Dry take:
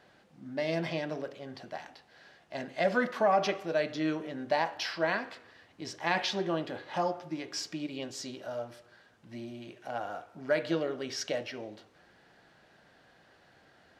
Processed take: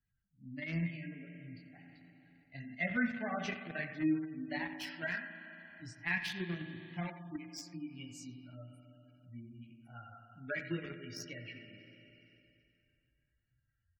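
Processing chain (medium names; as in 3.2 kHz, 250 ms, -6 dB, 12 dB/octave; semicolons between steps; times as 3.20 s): expander on every frequency bin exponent 2; chorus voices 4, 0.88 Hz, delay 20 ms, depth 3.5 ms; spring tank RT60 2.4 s, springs 35/57 ms, chirp 30 ms, DRR 6 dB; 1.83–2.75 s: transient shaper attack +5 dB, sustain +9 dB; in parallel at -3 dB: small samples zeroed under -35 dBFS; on the sum: bass shelf 470 Hz -4 dB; speakerphone echo 90 ms, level -12 dB; spectral gate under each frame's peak -30 dB strong; graphic EQ 125/250/500/1000/2000/4000 Hz +11/+9/-10/-11/+9/-5 dB; three bands compressed up and down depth 40%; trim -2 dB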